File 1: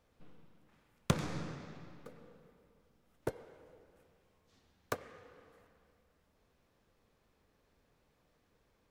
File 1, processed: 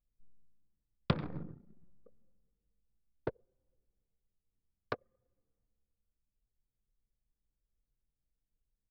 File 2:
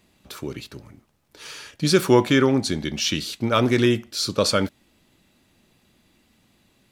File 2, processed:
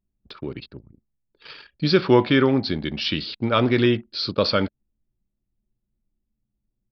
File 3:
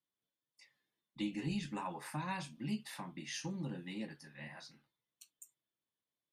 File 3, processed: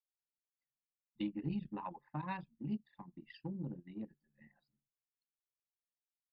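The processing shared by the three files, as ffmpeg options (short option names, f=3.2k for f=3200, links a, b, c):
-af "aresample=11025,aresample=44100,anlmdn=1"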